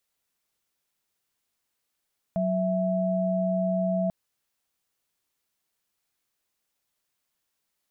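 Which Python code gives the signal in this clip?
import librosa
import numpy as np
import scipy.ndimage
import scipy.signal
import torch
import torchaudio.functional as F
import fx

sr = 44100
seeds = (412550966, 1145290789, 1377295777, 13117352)

y = fx.chord(sr, length_s=1.74, notes=(54, 76), wave='sine', level_db=-25.5)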